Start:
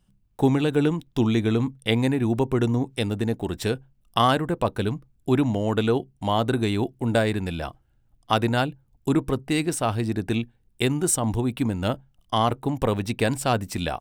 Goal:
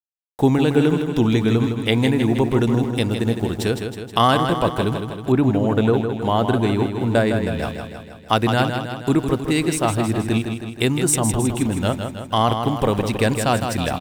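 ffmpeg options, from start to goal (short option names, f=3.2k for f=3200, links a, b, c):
-filter_complex "[0:a]aeval=exprs='val(0)*gte(abs(val(0)),0.00708)':c=same,aecho=1:1:159|318|477|636|795|954|1113|1272:0.447|0.264|0.155|0.0917|0.0541|0.0319|0.0188|0.0111,asettb=1/sr,asplit=3[a][b][c];[a]atrim=end=5.324[d];[b]atrim=start=5.32:end=7.59,asetpts=PTS-STARTPTS,afade=t=in:d=0.004:c=qsin,afade=t=out:st=2.266:d=0.004:c=qsin,adynamicequalizer=threshold=0.00891:dfrequency=2300:dqfactor=0.7:tfrequency=2300:tqfactor=0.7:attack=5:release=100:ratio=0.375:range=3.5:mode=cutabove:tftype=highshelf[e];[c]atrim=start=7.586[f];[d][e]acrossfade=d=0.004:c1=hsin:c2=qsin[g];[g][f]acrossfade=d=0.004:c1=qsin:c2=hsin,volume=3.5dB"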